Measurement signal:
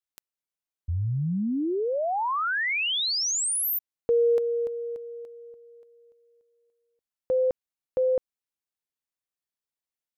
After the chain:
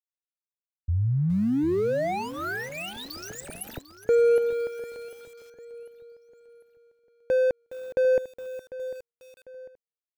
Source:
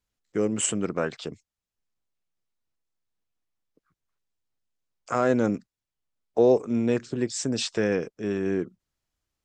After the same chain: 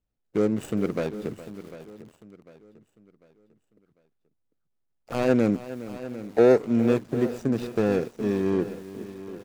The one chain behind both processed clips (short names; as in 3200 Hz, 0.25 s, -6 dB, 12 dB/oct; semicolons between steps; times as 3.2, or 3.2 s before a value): median filter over 41 samples; feedback echo 0.748 s, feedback 39%, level -15 dB; lo-fi delay 0.414 s, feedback 35%, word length 7-bit, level -14.5 dB; gain +3 dB